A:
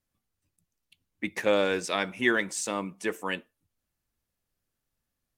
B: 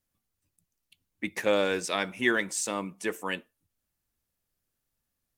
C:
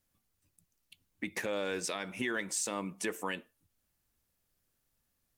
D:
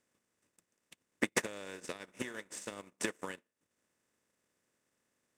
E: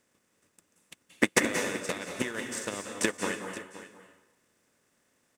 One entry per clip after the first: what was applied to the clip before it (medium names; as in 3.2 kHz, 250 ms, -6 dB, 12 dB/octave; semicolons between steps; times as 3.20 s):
treble shelf 7.4 kHz +5.5 dB; trim -1 dB
compression 5:1, threshold -33 dBFS, peak gain reduction 13 dB; peak limiter -25.5 dBFS, peak gain reduction 6.5 dB; trim +3 dB
spectral levelling over time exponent 0.4; transient shaper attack +8 dB, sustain -11 dB; upward expansion 2.5:1, over -41 dBFS; trim -4.5 dB
delay 523 ms -15 dB; reverberation RT60 0.85 s, pre-delay 169 ms, DRR 4.5 dB; trim +8 dB